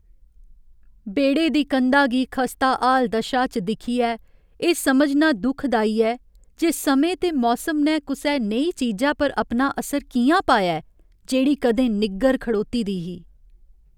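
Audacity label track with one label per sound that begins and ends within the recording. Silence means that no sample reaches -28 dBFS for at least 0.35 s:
1.070000	4.160000	sound
4.620000	6.150000	sound
6.600000	10.800000	sound
11.290000	13.150000	sound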